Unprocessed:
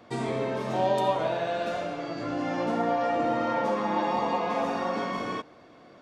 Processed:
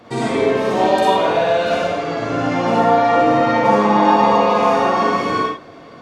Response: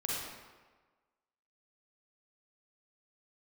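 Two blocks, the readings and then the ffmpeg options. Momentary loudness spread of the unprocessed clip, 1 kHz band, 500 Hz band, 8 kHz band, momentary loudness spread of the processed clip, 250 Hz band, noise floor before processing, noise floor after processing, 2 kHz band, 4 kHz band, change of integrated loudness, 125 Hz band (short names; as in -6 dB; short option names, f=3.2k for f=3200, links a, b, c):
7 LU, +13.5 dB, +12.0 dB, n/a, 8 LU, +12.0 dB, -53 dBFS, -40 dBFS, +13.0 dB, +12.5 dB, +12.5 dB, +11.0 dB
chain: -filter_complex "[1:a]atrim=start_sample=2205,afade=t=out:st=0.21:d=0.01,atrim=end_sample=9702,asetrate=41454,aresample=44100[a];[0:a][a]afir=irnorm=-1:irlink=0,volume=9dB"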